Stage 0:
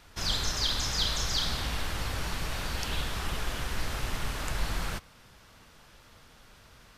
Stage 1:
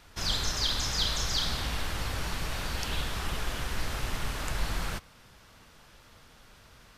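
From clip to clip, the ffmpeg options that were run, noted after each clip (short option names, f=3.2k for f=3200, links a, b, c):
-af anull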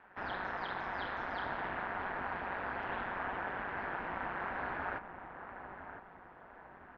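-filter_complex "[0:a]highpass=f=160:w=0.5412,highpass=f=160:w=1.3066,equalizer=f=200:t=q:w=4:g=-5,equalizer=f=380:t=q:w=4:g=-3,equalizer=f=830:t=q:w=4:g=9,equalizer=f=1.6k:t=q:w=4:g=6,lowpass=f=2k:w=0.5412,lowpass=f=2k:w=1.3066,asplit=2[a][b];[b]adelay=1009,lowpass=f=1.4k:p=1,volume=-8dB,asplit=2[c][d];[d]adelay=1009,lowpass=f=1.4k:p=1,volume=0.48,asplit=2[e][f];[f]adelay=1009,lowpass=f=1.4k:p=1,volume=0.48,asplit=2[g][h];[h]adelay=1009,lowpass=f=1.4k:p=1,volume=0.48,asplit=2[i][j];[j]adelay=1009,lowpass=f=1.4k:p=1,volume=0.48,asplit=2[k][l];[l]adelay=1009,lowpass=f=1.4k:p=1,volume=0.48[m];[a][c][e][g][i][k][m]amix=inputs=7:normalize=0,aeval=exprs='val(0)*sin(2*PI*95*n/s)':c=same"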